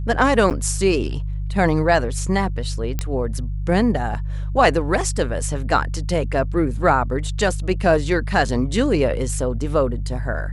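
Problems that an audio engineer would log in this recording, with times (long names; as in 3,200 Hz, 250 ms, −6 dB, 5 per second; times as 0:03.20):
mains hum 50 Hz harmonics 3 −25 dBFS
0:00.50–0:00.51: drop-out 8.3 ms
0:02.99: click −9 dBFS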